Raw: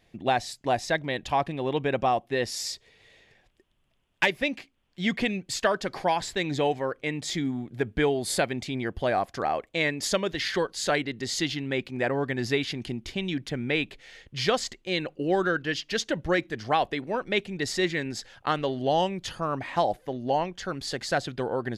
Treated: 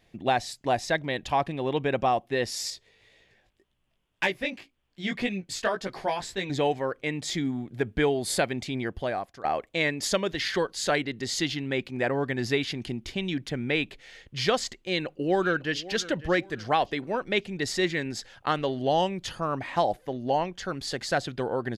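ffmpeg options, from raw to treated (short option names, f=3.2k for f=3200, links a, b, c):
-filter_complex "[0:a]asettb=1/sr,asplit=3[a][b][c];[a]atrim=end=2.704[d];[b]atrim=start=2.7:end=6.5,asetpts=PTS-STARTPTS,afade=t=in:d=0.004:c=qsin,afade=t=out:st=3.796:d=0.004:c=qsin,flanger=delay=15.5:depth=4.7:speed=1.9[e];[c]atrim=start=6.496[f];[d][e]acrossfade=d=0.004:c1=hsin:c2=qsin[g];[g][f]acrossfade=d=0.004:c1=qsin:c2=hsin,asplit=2[h][i];[i]afade=t=in:st=14.79:d=0.01,afade=t=out:st=15.88:d=0.01,aecho=0:1:550|1100|1650:0.133352|0.0466733|0.0163356[j];[h][j]amix=inputs=2:normalize=0,asplit=2[k][l];[k]atrim=end=9.44,asetpts=PTS-STARTPTS,afade=t=out:st=8.81:d=0.63:silence=0.16788[m];[l]atrim=start=9.44,asetpts=PTS-STARTPTS,afade=t=in:d=0.004:c=hsin:silence=0.16788[n];[m][n]concat=n=2:v=0:a=1"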